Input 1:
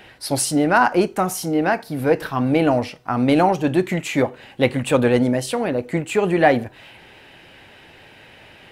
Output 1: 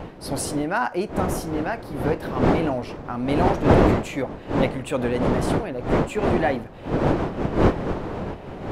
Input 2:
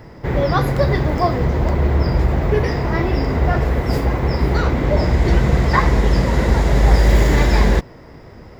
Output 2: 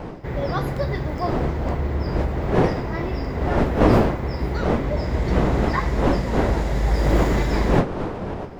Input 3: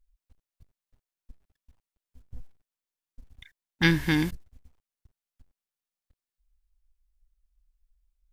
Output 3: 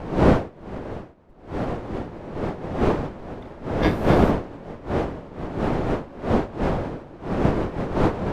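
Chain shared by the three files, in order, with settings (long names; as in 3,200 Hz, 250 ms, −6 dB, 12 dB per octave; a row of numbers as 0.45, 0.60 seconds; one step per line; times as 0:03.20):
wind on the microphone 500 Hz −16 dBFS
level −8 dB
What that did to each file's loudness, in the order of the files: −4.0, −5.0, +0.5 LU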